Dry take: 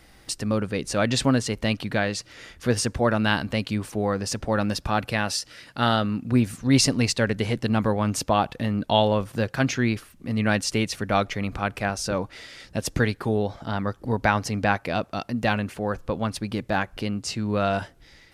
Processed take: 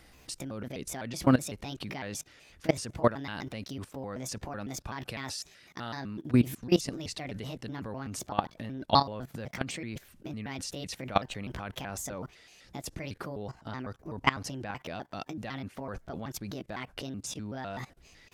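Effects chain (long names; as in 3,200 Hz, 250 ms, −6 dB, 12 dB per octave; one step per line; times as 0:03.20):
pitch shifter gated in a rhythm +4.5 semitones, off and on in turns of 126 ms
output level in coarse steps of 19 dB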